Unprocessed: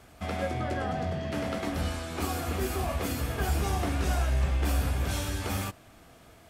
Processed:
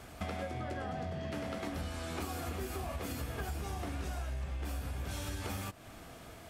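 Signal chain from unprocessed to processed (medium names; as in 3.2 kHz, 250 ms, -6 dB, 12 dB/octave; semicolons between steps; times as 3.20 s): compression 10:1, threshold -39 dBFS, peak gain reduction 17 dB; trim +3.5 dB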